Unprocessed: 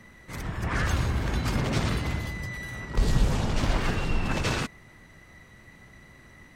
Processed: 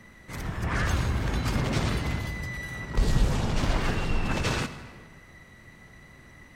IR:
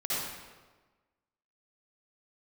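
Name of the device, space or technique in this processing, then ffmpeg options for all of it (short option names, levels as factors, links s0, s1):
saturated reverb return: -filter_complex "[0:a]asplit=2[s0][s1];[1:a]atrim=start_sample=2205[s2];[s1][s2]afir=irnorm=-1:irlink=0,asoftclip=type=tanh:threshold=0.0944,volume=0.188[s3];[s0][s3]amix=inputs=2:normalize=0,volume=0.891"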